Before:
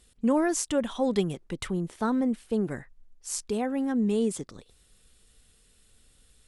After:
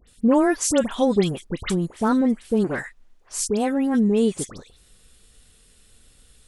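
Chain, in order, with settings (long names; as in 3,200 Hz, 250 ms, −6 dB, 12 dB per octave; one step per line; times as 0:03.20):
all-pass dispersion highs, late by 78 ms, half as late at 2,000 Hz
0:02.64–0:03.29: mid-hump overdrive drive 14 dB, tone 4,000 Hz, clips at −21 dBFS
level +6.5 dB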